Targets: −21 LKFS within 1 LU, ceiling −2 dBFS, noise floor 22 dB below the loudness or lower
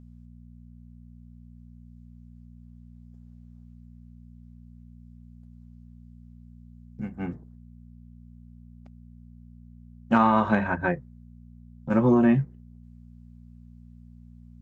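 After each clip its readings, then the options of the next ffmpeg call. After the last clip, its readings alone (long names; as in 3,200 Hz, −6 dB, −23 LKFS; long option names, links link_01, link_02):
mains hum 60 Hz; hum harmonics up to 240 Hz; level of the hum −45 dBFS; integrated loudness −24.0 LKFS; sample peak −8.5 dBFS; target loudness −21.0 LKFS
→ -af "bandreject=frequency=60:width_type=h:width=4,bandreject=frequency=120:width_type=h:width=4,bandreject=frequency=180:width_type=h:width=4,bandreject=frequency=240:width_type=h:width=4"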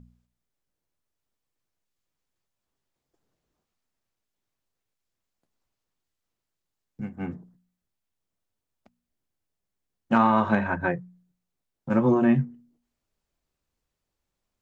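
mains hum none found; integrated loudness −24.0 LKFS; sample peak −7.5 dBFS; target loudness −21.0 LKFS
→ -af "volume=3dB"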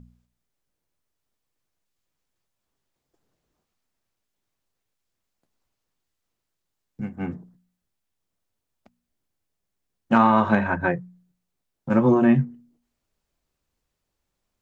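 integrated loudness −21.0 LKFS; sample peak −4.5 dBFS; background noise floor −81 dBFS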